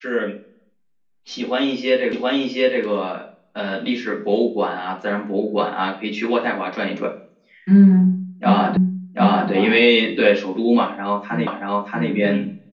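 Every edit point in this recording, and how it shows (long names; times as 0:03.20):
0:02.13: the same again, the last 0.72 s
0:08.77: the same again, the last 0.74 s
0:11.47: the same again, the last 0.63 s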